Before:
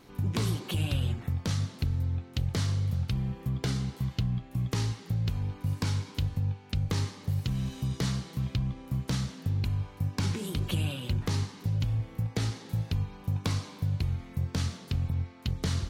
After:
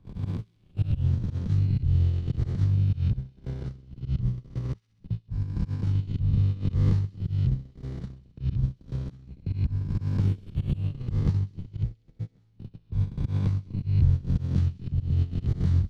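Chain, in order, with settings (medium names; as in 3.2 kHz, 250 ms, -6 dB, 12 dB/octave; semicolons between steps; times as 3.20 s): reverse spectral sustain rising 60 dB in 2.45 s; RIAA curve playback; de-hum 54.37 Hz, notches 5; gate -13 dBFS, range -42 dB; harmonic-percussive split percussive +4 dB; dynamic bell 130 Hz, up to +6 dB, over -28 dBFS, Q 1.1; slow attack 201 ms; feedback echo behind a high-pass 65 ms, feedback 72%, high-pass 2.7 kHz, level -20 dB; three bands compressed up and down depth 40%; trim -8 dB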